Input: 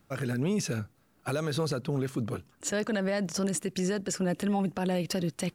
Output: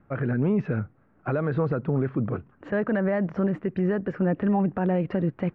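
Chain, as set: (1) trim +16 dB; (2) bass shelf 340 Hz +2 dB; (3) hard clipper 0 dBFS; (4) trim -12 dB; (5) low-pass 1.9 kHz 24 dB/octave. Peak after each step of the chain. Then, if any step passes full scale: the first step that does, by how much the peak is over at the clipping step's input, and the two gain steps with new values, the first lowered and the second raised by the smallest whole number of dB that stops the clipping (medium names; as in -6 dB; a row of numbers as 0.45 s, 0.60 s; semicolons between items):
-4.0 dBFS, -3.0 dBFS, -3.0 dBFS, -15.0 dBFS, -15.5 dBFS; nothing clips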